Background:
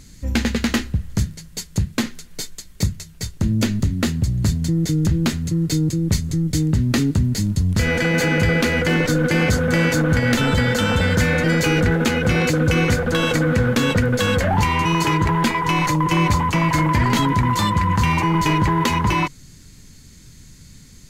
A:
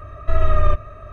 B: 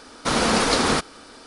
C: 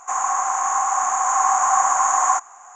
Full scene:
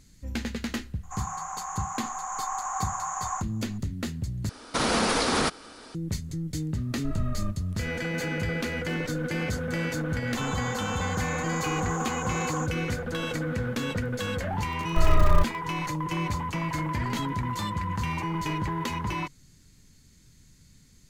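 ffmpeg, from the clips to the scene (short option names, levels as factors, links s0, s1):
-filter_complex "[3:a]asplit=2[s0][s1];[1:a]asplit=2[s2][s3];[0:a]volume=0.251[s4];[2:a]alimiter=level_in=3.98:limit=0.891:release=50:level=0:latency=1[s5];[s1]asoftclip=type=tanh:threshold=0.335[s6];[s3]aeval=exprs='val(0)*gte(abs(val(0)),0.0447)':c=same[s7];[s4]asplit=2[s8][s9];[s8]atrim=end=4.494[s10];[s5]atrim=end=1.46,asetpts=PTS-STARTPTS,volume=0.2[s11];[s9]atrim=start=5.946[s12];[s0]atrim=end=2.75,asetpts=PTS-STARTPTS,volume=0.2,afade=t=in:d=0.004:c=hsin,afade=t=out:st=2.746:d=0.004:c=hsin,adelay=1030[s13];[s2]atrim=end=1.12,asetpts=PTS-STARTPTS,volume=0.141,afade=t=in:d=0.004:c=hsin,afade=t=out:st=1.116:d=0.004:c=hsin,adelay=6760[s14];[s6]atrim=end=2.75,asetpts=PTS-STARTPTS,volume=0.178,afade=t=in:d=0.004:c=hsin,afade=t=out:st=2.746:d=0.004:c=hsin,adelay=10270[s15];[s7]atrim=end=1.12,asetpts=PTS-STARTPTS,volume=0.631,afade=t=in:d=0.004:c=hsin,afade=t=out:st=1.116:d=0.004:c=hsin,adelay=14680[s16];[s10][s11]acrossfade=d=0.004:c1=hsin:c2=hsin[s17];[s17][s12]acrossfade=d=0.004:c1=hsin:c2=hsin[s18];[s18][s13][s14][s15][s16]amix=inputs=5:normalize=0"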